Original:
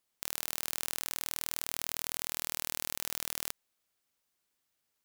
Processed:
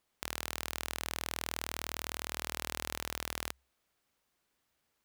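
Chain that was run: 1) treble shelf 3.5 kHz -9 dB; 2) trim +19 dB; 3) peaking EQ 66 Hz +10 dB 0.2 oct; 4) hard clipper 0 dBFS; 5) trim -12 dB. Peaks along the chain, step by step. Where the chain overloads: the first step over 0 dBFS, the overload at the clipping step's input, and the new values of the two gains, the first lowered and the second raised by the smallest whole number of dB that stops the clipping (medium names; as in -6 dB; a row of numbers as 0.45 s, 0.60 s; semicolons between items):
-14.5 dBFS, +4.5 dBFS, +4.5 dBFS, 0.0 dBFS, -12.0 dBFS; step 2, 4.5 dB; step 2 +14 dB, step 5 -7 dB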